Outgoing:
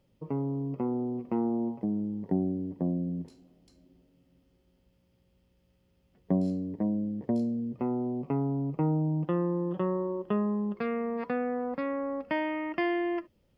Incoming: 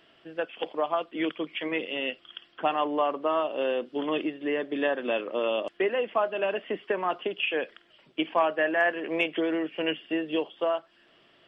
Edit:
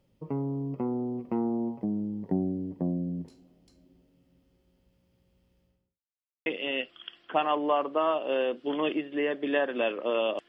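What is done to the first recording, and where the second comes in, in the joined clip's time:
outgoing
0:05.56–0:06.02: fade out and dull
0:06.02–0:06.46: silence
0:06.46: continue with incoming from 0:01.75

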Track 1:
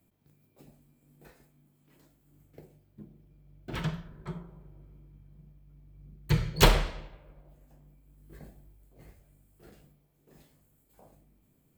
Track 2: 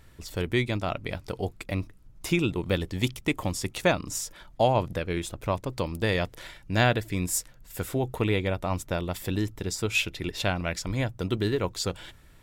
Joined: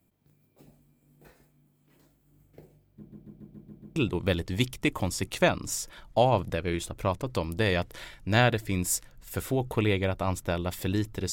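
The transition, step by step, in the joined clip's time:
track 1
0:02.98: stutter in place 0.14 s, 7 plays
0:03.96: continue with track 2 from 0:02.39

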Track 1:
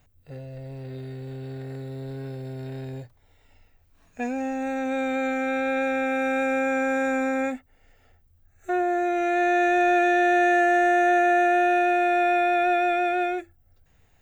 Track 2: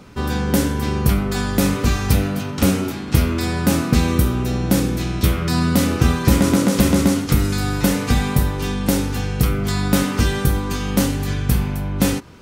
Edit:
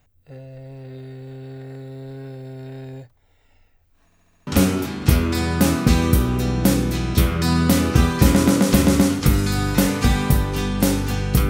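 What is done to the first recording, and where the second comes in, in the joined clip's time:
track 1
0:04.05: stutter in place 0.07 s, 6 plays
0:04.47: continue with track 2 from 0:02.53

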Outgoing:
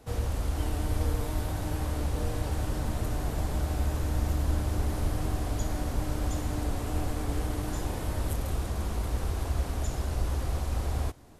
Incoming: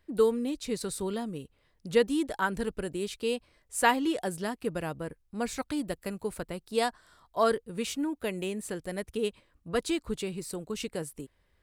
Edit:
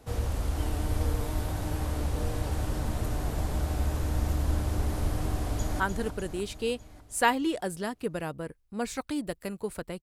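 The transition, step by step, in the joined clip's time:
outgoing
0:05.45–0:05.80: delay throw 300 ms, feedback 60%, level −6.5 dB
0:05.80: continue with incoming from 0:02.41

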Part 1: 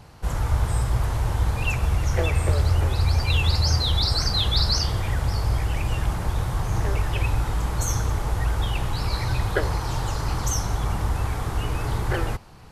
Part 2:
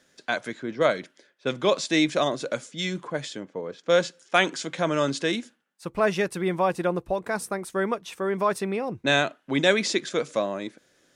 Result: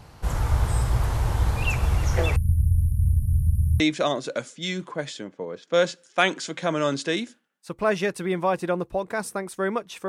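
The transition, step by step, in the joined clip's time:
part 1
0:02.36–0:03.80: linear-phase brick-wall band-stop 230–9,100 Hz
0:03.80: continue with part 2 from 0:01.96

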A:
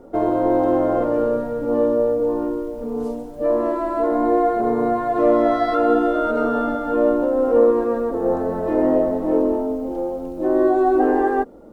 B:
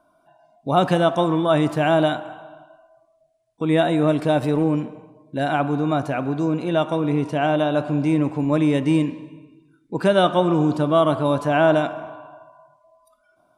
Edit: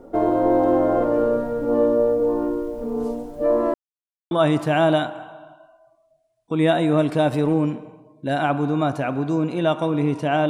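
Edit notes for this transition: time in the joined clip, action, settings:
A
0:03.74–0:04.31: silence
0:04.31: continue with B from 0:01.41

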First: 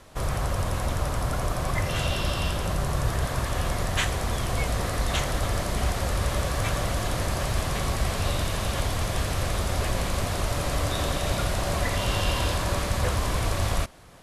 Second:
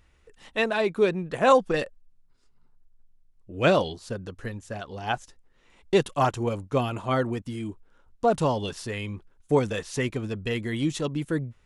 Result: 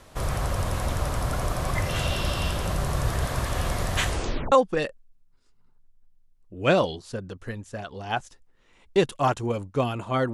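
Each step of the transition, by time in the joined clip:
first
0:04.08: tape stop 0.44 s
0:04.52: continue with second from 0:01.49

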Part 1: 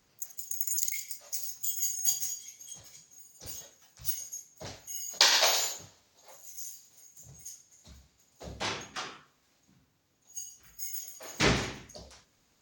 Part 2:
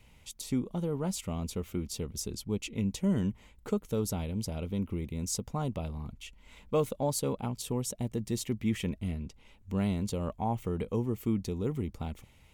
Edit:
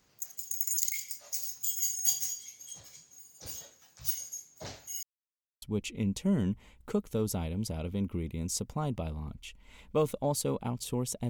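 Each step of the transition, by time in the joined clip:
part 1
0:05.03–0:05.62: silence
0:05.62: continue with part 2 from 0:02.40

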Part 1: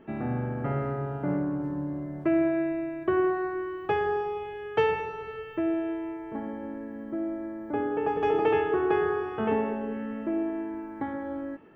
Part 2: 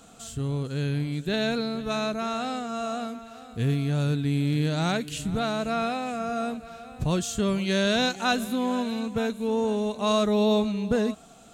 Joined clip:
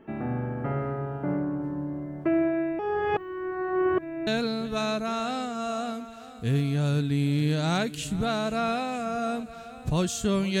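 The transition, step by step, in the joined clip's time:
part 1
0:02.79–0:04.27: reverse
0:04.27: continue with part 2 from 0:01.41

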